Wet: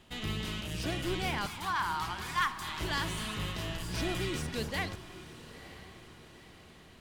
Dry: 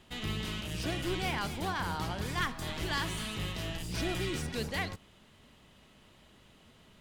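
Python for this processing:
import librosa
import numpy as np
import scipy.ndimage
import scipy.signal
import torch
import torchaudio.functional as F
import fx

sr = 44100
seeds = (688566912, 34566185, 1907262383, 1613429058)

y = fx.low_shelf_res(x, sr, hz=770.0, db=-9.0, q=3.0, at=(1.46, 2.8))
y = fx.echo_diffused(y, sr, ms=958, feedback_pct=50, wet_db=-15.0)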